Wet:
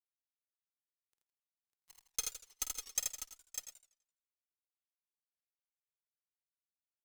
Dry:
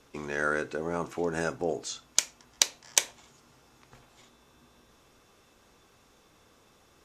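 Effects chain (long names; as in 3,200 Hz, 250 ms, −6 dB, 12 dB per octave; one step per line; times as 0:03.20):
high-pass filter 64 Hz 24 dB per octave
first-order pre-emphasis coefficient 0.97
in parallel at −2.5 dB: compressor whose output falls as the input rises −51 dBFS, ratio −0.5
on the sum: stiff-string resonator 380 Hz, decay 0.54 s, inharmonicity 0.03
harmonic generator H 5 −45 dB, 6 −43 dB, 7 −29 dB, 8 −28 dB, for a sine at −28.5 dBFS
bit reduction 8 bits
harmonic generator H 3 −31 dB, 6 −44 dB, 7 −17 dB, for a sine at −28 dBFS
phase shifter 0.6 Hz, delay 3.7 ms, feedback 35%
multi-tap delay 49/80/164/566/599/707 ms −10/−4/−16/−17.5/−7/−18.5 dB
feedback echo with a swinging delay time 84 ms, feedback 40%, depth 212 cents, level −13 dB
level +9 dB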